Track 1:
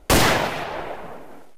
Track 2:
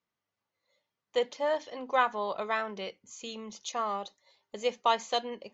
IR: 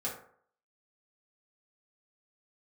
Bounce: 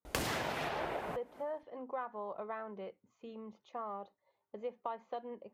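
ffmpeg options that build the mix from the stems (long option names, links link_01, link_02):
-filter_complex "[0:a]acompressor=threshold=-24dB:ratio=6,adelay=50,volume=3dB[link_01];[1:a]lowpass=1200,volume=-5dB,asplit=2[link_02][link_03];[link_03]apad=whole_len=71870[link_04];[link_01][link_04]sidechaincompress=threshold=-49dB:ratio=10:attack=16:release=503[link_05];[link_05][link_02]amix=inputs=2:normalize=0,highpass=47,acompressor=threshold=-38dB:ratio=3"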